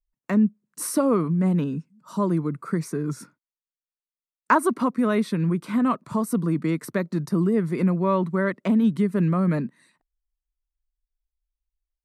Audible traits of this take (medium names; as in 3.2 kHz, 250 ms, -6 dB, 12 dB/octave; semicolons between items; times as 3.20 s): noise floor -96 dBFS; spectral tilt -6.0 dB/octave